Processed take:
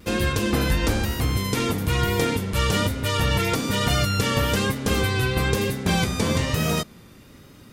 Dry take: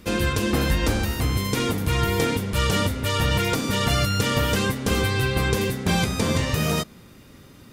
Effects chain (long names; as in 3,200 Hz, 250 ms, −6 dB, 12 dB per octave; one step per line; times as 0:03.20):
pitch vibrato 1.1 Hz 36 cents